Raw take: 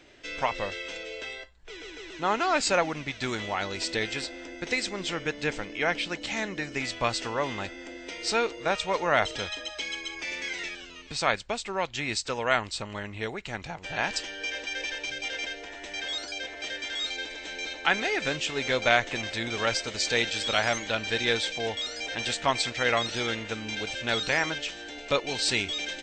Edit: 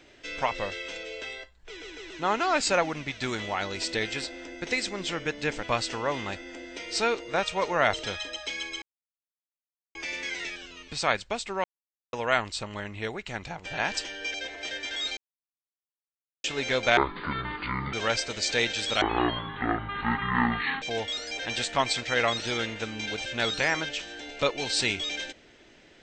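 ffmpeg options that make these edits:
-filter_complex "[0:a]asplit=12[a][b][c][d][e][f][g][h][i][j][k][l];[a]atrim=end=5.632[m];[b]atrim=start=6.948:end=10.14,asetpts=PTS-STARTPTS,afade=t=out:st=3.188:d=0.004:c=hsin,apad=pad_dur=1.13[n];[c]atrim=start=10.14:end=11.83,asetpts=PTS-STARTPTS,afade=t=in:d=0.004:c=hsin,afade=t=out:st=1.686:d=0.004:c=hsin[o];[d]atrim=start=11.83:end=12.32,asetpts=PTS-STARTPTS,volume=0[p];[e]atrim=start=12.32:end=14.532,asetpts=PTS-STARTPTS,afade=t=in:d=0.004:c=hsin[q];[f]atrim=start=16.328:end=17.16,asetpts=PTS-STARTPTS,afade=t=out:st=0.828:d=0.004:c=hsin[r];[g]atrim=start=17.16:end=18.43,asetpts=PTS-STARTPTS,volume=0[s];[h]atrim=start=18.43:end=18.964,asetpts=PTS-STARTPTS,afade=t=in:d=0.004:c=hsin[t];[i]atrim=start=18.96:end=19.51,asetpts=PTS-STARTPTS,asetrate=25137,aresample=44100[u];[j]atrim=start=19.506:end=20.594[v];[k]atrim=start=20.59:end=21.51,asetpts=PTS-STARTPTS,asetrate=22491,aresample=44100[w];[l]atrim=start=21.506[x];[n][o][p][q]concat=n=4:v=0:a=1[y];[m][y]acrossfade=d=0.004:c1=hsin:c2=hsin[z];[r][s][t]concat=n=3:v=0:a=1[aa];[z][aa]acrossfade=d=0.004:c1=hsin:c2=hsin[ab];[ab][u]acrossfade=d=0.004:c1=hsin:c2=hsin[ac];[ac][v]acrossfade=d=0.004:c1=hsin:c2=hsin[ad];[ad][w]acrossfade=d=0.004:c1=hsin:c2=hsin[ae];[ae][x]acrossfade=d=0.004:c1=hsin:c2=hsin"

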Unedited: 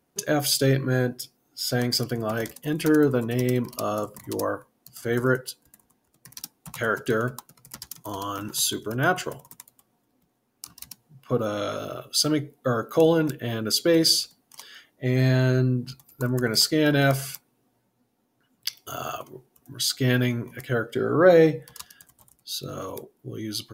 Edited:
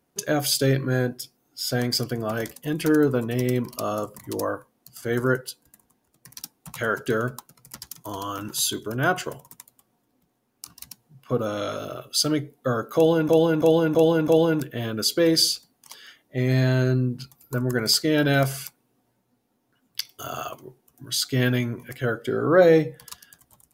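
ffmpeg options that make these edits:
-filter_complex "[0:a]asplit=5[a][b][c][d][e];[a]atrim=end=13.292[f];[b]atrim=start=12.958:end=13.292[g];[c]atrim=start=12.958:end=13.292[h];[d]atrim=start=12.958:end=13.292[i];[e]atrim=start=12.958[j];[f][g]acrossfade=d=0.004:c1=hsin:c2=hsin[k];[k][h]acrossfade=d=0.004:c1=hsin:c2=hsin[l];[l][i]acrossfade=d=0.004:c1=hsin:c2=hsin[m];[m][j]acrossfade=d=0.004:c1=hsin:c2=hsin"

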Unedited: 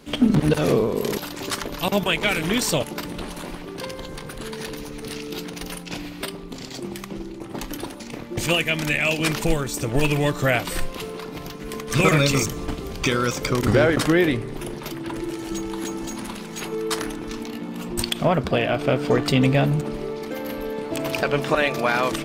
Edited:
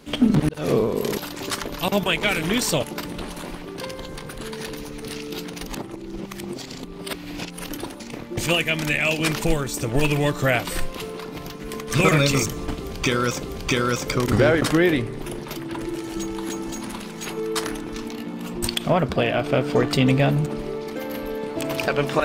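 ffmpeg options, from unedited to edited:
-filter_complex "[0:a]asplit=5[a][b][c][d][e];[a]atrim=end=0.49,asetpts=PTS-STARTPTS,afade=t=out:st=0.486:d=0.004:c=hsin[f];[b]atrim=start=0.49:end=5.672,asetpts=PTS-STARTPTS,afade=t=in:d=0.27[g];[c]atrim=start=5.668:end=7.692,asetpts=PTS-STARTPTS,areverse[h];[d]atrim=start=7.688:end=13.432[i];[e]atrim=start=12.778[j];[f][g]concat=n=2:v=0:a=1[k];[k][h]acrossfade=d=0.004:c1=hsin:c2=hsin[l];[l][i]acrossfade=d=0.004:c1=hsin:c2=hsin[m];[m][j]acrossfade=d=0.004:c1=hsin:c2=hsin"

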